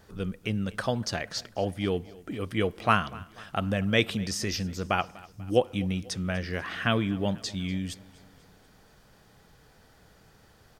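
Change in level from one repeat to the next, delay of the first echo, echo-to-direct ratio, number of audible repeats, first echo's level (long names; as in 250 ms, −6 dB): −5.5 dB, 245 ms, −20.0 dB, 3, −21.5 dB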